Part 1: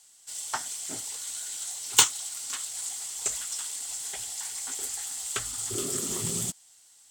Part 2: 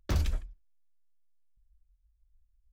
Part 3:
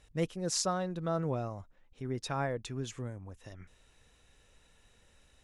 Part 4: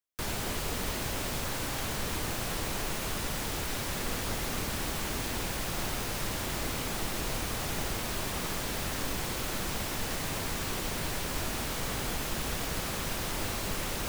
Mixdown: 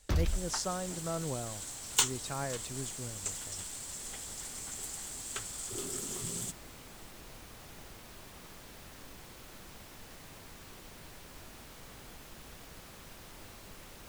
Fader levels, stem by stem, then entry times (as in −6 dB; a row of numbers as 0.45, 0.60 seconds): −8.0, −1.5, −4.0, −17.0 decibels; 0.00, 0.00, 0.00, 0.00 seconds